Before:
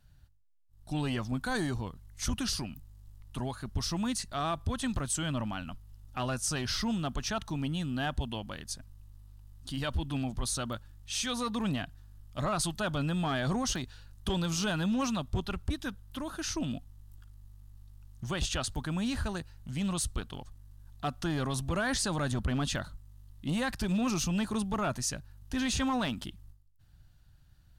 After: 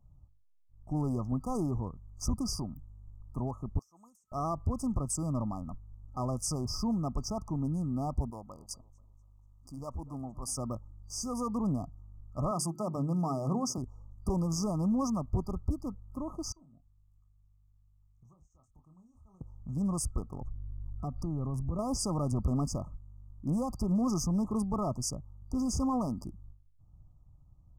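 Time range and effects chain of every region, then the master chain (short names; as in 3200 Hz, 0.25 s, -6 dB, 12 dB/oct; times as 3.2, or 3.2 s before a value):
3.79–4.32 differentiator + compressor 20:1, threshold -45 dBFS
8.3–10.58 low shelf 500 Hz -10 dB + feedback echo 0.242 s, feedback 35%, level -19 dB
12.51–13.78 HPF 120 Hz 24 dB/oct + notches 50/100/150/200/250/300/350/400 Hz
16.52–19.41 passive tone stack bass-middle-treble 5-5-5 + compressor 12:1, threshold -56 dBFS + doubler 27 ms -7 dB
20.41–21.79 low shelf 230 Hz +11 dB + compressor 2.5:1, threshold -36 dBFS
whole clip: Wiener smoothing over 9 samples; FFT band-reject 1300–4700 Hz; low shelf 370 Hz +3.5 dB; gain -1.5 dB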